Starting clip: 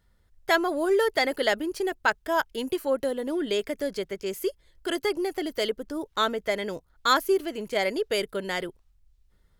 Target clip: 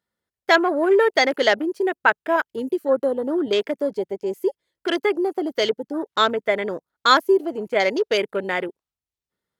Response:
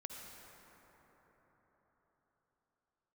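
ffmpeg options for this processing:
-filter_complex "[0:a]highpass=210,afwtdn=0.0141,asettb=1/sr,asplit=3[a][b][c];[a]atrim=end=2.364[d];[b]atrim=start=2.36:end=2.89,asetpts=PTS-STARTPTS,afade=t=in:d=0.004:c=qsin,afade=t=out:st=0.526:d=0.004:c=qsin,equalizer=f=850:t=o:w=1:g=-7.5[e];[c]atrim=start=2.886[f];[d][e]acrossfade=d=0.004:c1=hsin:c2=qsin[g];[g][f]acrossfade=d=0.004:c1=qsin:c2=hsin,volume=6.5dB"

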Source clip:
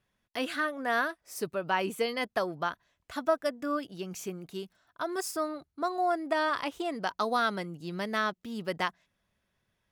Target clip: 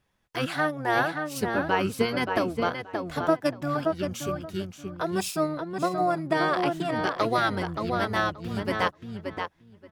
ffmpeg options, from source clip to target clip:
-filter_complex "[0:a]asplit=2[a][b];[b]adelay=577,lowpass=f=3.4k:p=1,volume=-5dB,asplit=2[c][d];[d]adelay=577,lowpass=f=3.4k:p=1,volume=0.18,asplit=2[e][f];[f]adelay=577,lowpass=f=3.4k:p=1,volume=0.18[g];[a][c][e][g]amix=inputs=4:normalize=0,asplit=2[h][i];[i]asetrate=22050,aresample=44100,atempo=2,volume=-3dB[j];[h][j]amix=inputs=2:normalize=0,volume=2.5dB"

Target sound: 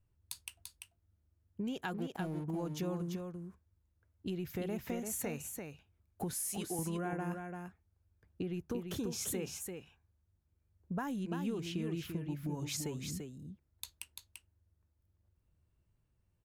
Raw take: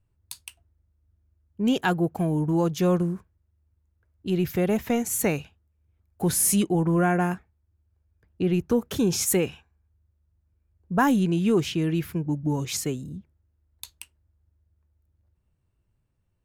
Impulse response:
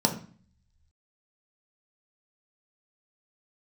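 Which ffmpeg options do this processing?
-filter_complex "[0:a]asettb=1/sr,asplit=3[a][b][c];[a]atrim=end=6.334[d];[b]atrim=start=6.33:end=6.79,asetpts=PTS-STARTPTS,afade=t=in:d=0.004:c=qsin,afade=t=out:st=0.456:d=0.004:c=qsin,highpass=f=560:p=1[e];[c]atrim=start=6.786[f];[d][e]acrossfade=d=0.004:c1=hsin:c2=qsin[g];[g][f]acrossfade=d=0.004:c1=qsin:c2=hsin,acompressor=threshold=-32dB:ratio=6,asettb=1/sr,asplit=3[h][i][j];[h]atrim=end=1.944[k];[i]atrim=start=1.94:end=2.44,asetpts=PTS-STARTPTS,afade=t=in:d=0.004:c=qsin,afade=t=out:st=0.496:d=0.004:c=qsin,aeval=exprs='sgn(val(0))*max(abs(val(0))-0.00422,0)':c=same[l];[j]atrim=start=2.436[m];[k][l]acrossfade=d=0.004:c1=hsin:c2=qsin[n];[n][m]acrossfade=d=0.004:c1=qsin:c2=hsin,aecho=1:1:341:0.531,volume=-4.5dB"

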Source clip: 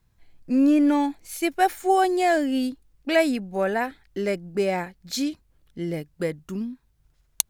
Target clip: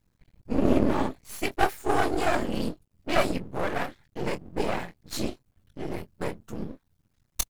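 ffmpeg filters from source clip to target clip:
-filter_complex "[0:a]afftfilt=real='hypot(re,im)*cos(2*PI*random(0))':imag='hypot(re,im)*sin(2*PI*random(1))':win_size=512:overlap=0.75,asplit=2[a][b];[b]adelay=23,volume=-11dB[c];[a][c]amix=inputs=2:normalize=0,aeval=exprs='max(val(0),0)':c=same,volume=5.5dB"

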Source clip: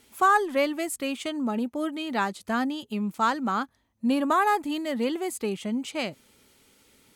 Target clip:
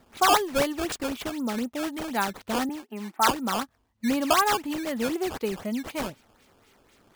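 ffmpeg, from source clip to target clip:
-filter_complex "[0:a]asettb=1/sr,asplit=3[a][b][c];[a]atrim=end=2.694[d];[b]atrim=start=2.69:end=3.31,asetpts=PTS-STARTPTS,afade=t=in:d=0.004:c=qsin,afade=t=out:st=0.616:d=0.004:c=qsin,highpass=f=240:w=0.5412,highpass=f=240:w=1.3066,equalizer=f=500:t=q:w=4:g=-7,equalizer=f=800:t=q:w=4:g=9,equalizer=f=1.7k:t=q:w=4:g=7,lowpass=f=2.2k:w=0.5412,lowpass=f=2.2k:w=1.3066[e];[c]atrim=start=3.306[f];[d][e]acrossfade=d=0.004:c1=hsin:c2=qsin[g];[g][f]acrossfade=d=0.004:c1=qsin:c2=hsin,flanger=delay=0.9:depth=2.1:regen=66:speed=0.5:shape=triangular,acrusher=samples=13:mix=1:aa=0.000001:lfo=1:lforange=20.8:lforate=4,volume=4.5dB"

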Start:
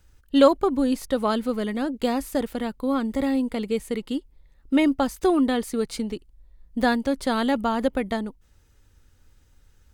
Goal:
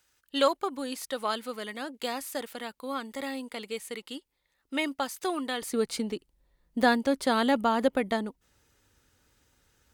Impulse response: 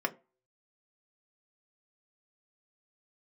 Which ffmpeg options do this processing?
-af "asetnsamples=n=441:p=0,asendcmd='5.62 highpass f 260',highpass=f=1.4k:p=1"

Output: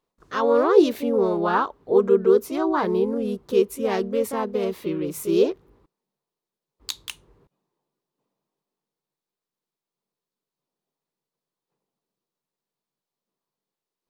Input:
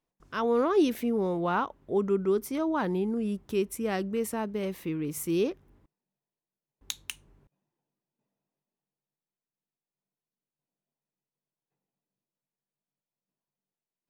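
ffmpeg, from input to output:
-filter_complex "[0:a]equalizer=f=400:t=o:w=0.67:g=8,equalizer=f=1k:t=o:w=0.67:g=7,equalizer=f=4k:t=o:w=0.67:g=6,asplit=2[a][b];[b]asetrate=52444,aresample=44100,atempo=0.840896,volume=-4dB[c];[a][c]amix=inputs=2:normalize=0"

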